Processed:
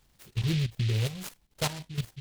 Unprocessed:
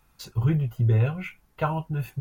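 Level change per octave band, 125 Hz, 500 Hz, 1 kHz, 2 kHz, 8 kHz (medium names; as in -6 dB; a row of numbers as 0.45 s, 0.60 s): -6.0 dB, -7.0 dB, -9.5 dB, -2.0 dB, no reading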